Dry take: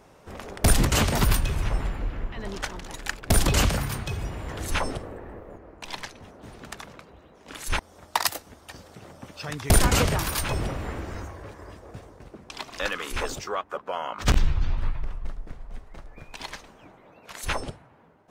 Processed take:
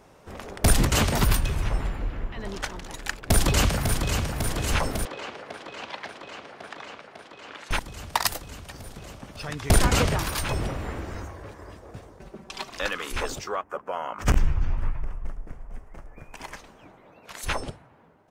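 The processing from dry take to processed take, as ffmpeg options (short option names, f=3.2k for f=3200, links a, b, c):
-filter_complex "[0:a]asplit=2[a][b];[b]afade=t=in:st=3.24:d=0.01,afade=t=out:st=4.26:d=0.01,aecho=0:1:550|1100|1650|2200|2750|3300|3850|4400|4950|5500|6050|6600:0.501187|0.40095|0.32076|0.256608|0.205286|0.164229|0.131383|0.105107|0.0840853|0.0672682|0.0538146|0.0430517[c];[a][c]amix=inputs=2:normalize=0,asettb=1/sr,asplit=3[d][e][f];[d]atrim=end=5.054[g];[e]atrim=start=5.05:end=7.71,asetpts=PTS-STARTPTS,afade=t=in:d=0.004:c=qsin,afade=t=out:st=2.656:d=0.004:c=qsin,highpass=410,lowpass=3.2k[h];[f]atrim=start=7.706[i];[g][h]acrossfade=d=0.004:c1=hsin:c2=qsin[j];[j][i]acrossfade=d=0.004:c1=qsin:c2=hsin,asettb=1/sr,asplit=3[k][l][m];[k]atrim=end=9.184[n];[l]atrim=start=9.18:end=10.41,asetpts=PTS-STARTPTS,afade=t=in:d=0.004:c=qsin,afade=t=out:st=1.226:d=0.004:c=qsin,highshelf=f=10k:g=-6.5[o];[m]atrim=start=10.406[p];[n][o]acrossfade=d=0.004:c1=hsin:c2=qsin[q];[q][p]acrossfade=d=0.004:c1=qsin:c2=hsin,asettb=1/sr,asplit=3[r][s][t];[r]atrim=end=12.194[u];[s]atrim=start=12.19:end=12.69,asetpts=PTS-STARTPTS,afade=t=in:d=0.004:c=qsin,afade=t=out:st=0.496:d=0.004:c=qsin,aecho=1:1:5.2:0.68,atrim=end_sample=22050[v];[t]atrim=start=12.686[w];[u][v]acrossfade=d=0.004:c1=hsin:c2=qsin[x];[x][w]acrossfade=d=0.004:c1=qsin:c2=hsin,asettb=1/sr,asplit=3[y][z][aa];[y]atrim=end=13.564[ab];[z]atrim=start=13.56:end=16.57,asetpts=PTS-STARTPTS,afade=t=in:d=0.004:c=qsin,afade=t=out:st=3.006:d=0.004:c=qsin,equalizer=f=3.9k:w=2.2:g=-14[ac];[aa]atrim=start=16.566[ad];[ab][ac]acrossfade=d=0.004:c1=hsin:c2=qsin[ae];[ae][ad]acrossfade=d=0.004:c1=qsin:c2=hsin"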